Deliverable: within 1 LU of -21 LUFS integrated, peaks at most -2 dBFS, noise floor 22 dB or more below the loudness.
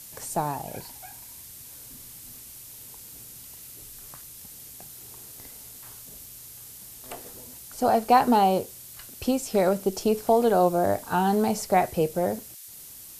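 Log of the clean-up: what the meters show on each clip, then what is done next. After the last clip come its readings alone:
noise floor -45 dBFS; noise floor target -46 dBFS; loudness -24.0 LUFS; peak -7.0 dBFS; loudness target -21.0 LUFS
-> denoiser 6 dB, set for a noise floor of -45 dBFS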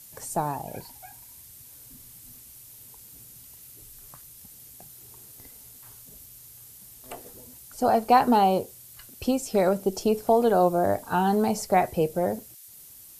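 noise floor -49 dBFS; loudness -24.0 LUFS; peak -7.0 dBFS; loudness target -21.0 LUFS
-> gain +3 dB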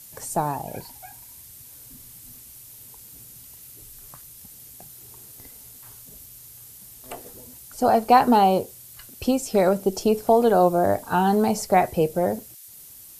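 loudness -21.0 LUFS; peak -4.0 dBFS; noise floor -46 dBFS

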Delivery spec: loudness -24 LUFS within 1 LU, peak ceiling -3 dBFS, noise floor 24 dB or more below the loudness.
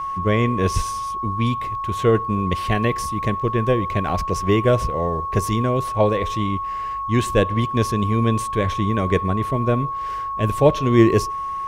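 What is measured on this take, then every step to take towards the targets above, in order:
steady tone 1100 Hz; tone level -24 dBFS; loudness -21.0 LUFS; peak -3.0 dBFS; loudness target -24.0 LUFS
-> notch 1100 Hz, Q 30; gain -3 dB

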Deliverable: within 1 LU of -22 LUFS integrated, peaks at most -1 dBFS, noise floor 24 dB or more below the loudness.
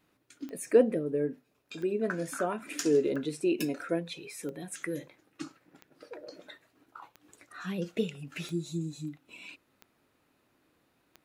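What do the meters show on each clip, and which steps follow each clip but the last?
clicks 9; loudness -32.0 LUFS; peak -10.0 dBFS; loudness target -22.0 LUFS
-> de-click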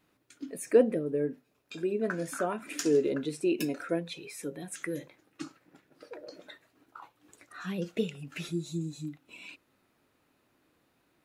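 clicks 0; loudness -32.0 LUFS; peak -10.0 dBFS; loudness target -22.0 LUFS
-> gain +10 dB; limiter -1 dBFS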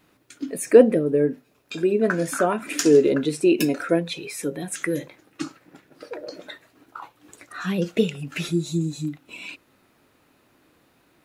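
loudness -22.0 LUFS; peak -1.0 dBFS; noise floor -62 dBFS

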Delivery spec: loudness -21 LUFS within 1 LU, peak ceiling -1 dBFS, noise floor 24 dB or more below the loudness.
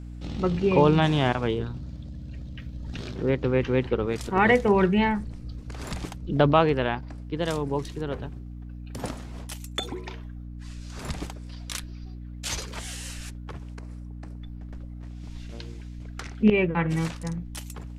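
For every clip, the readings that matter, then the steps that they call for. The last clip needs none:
hum 60 Hz; harmonics up to 300 Hz; hum level -36 dBFS; loudness -26.0 LUFS; peak -5.5 dBFS; loudness target -21.0 LUFS
-> de-hum 60 Hz, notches 5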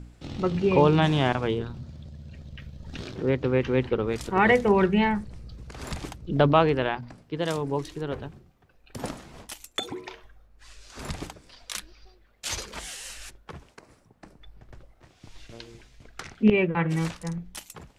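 hum none; loudness -25.5 LUFS; peak -6.0 dBFS; loudness target -21.0 LUFS
-> gain +4.5 dB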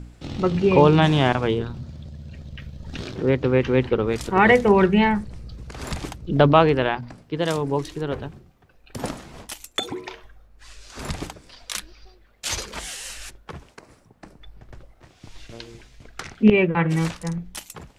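loudness -21.0 LUFS; peak -1.5 dBFS; noise floor -56 dBFS

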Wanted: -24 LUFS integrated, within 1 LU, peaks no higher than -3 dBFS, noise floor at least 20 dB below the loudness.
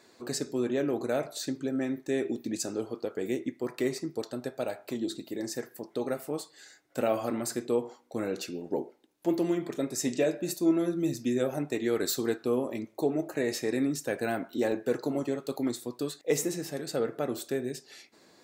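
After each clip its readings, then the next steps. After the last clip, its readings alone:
dropouts 1; longest dropout 1.1 ms; loudness -31.5 LUFS; peak -13.5 dBFS; loudness target -24.0 LUFS
-> interpolate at 14.72, 1.1 ms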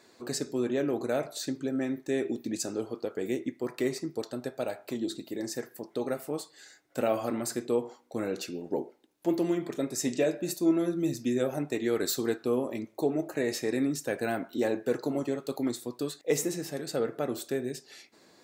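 dropouts 0; loudness -31.5 LUFS; peak -13.5 dBFS; loudness target -24.0 LUFS
-> gain +7.5 dB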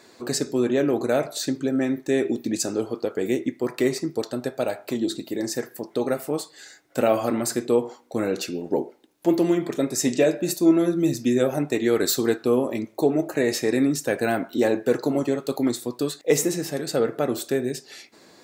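loudness -24.0 LUFS; peak -6.0 dBFS; noise floor -53 dBFS

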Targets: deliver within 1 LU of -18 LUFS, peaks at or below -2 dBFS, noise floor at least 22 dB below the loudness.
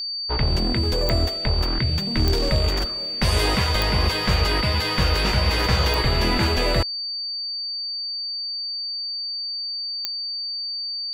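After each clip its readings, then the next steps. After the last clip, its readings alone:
clicks 5; steady tone 4600 Hz; tone level -26 dBFS; loudness -22.5 LUFS; peak -5.0 dBFS; loudness target -18.0 LUFS
-> de-click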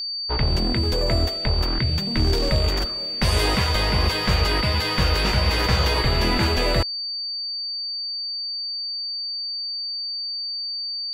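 clicks 0; steady tone 4600 Hz; tone level -26 dBFS
-> notch 4600 Hz, Q 30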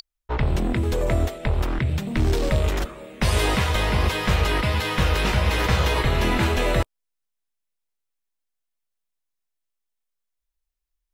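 steady tone none; loudness -23.0 LUFS; peak -9.0 dBFS; loudness target -18.0 LUFS
-> gain +5 dB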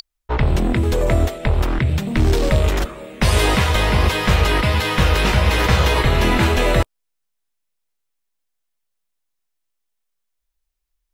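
loudness -18.0 LUFS; peak -4.0 dBFS; noise floor -75 dBFS

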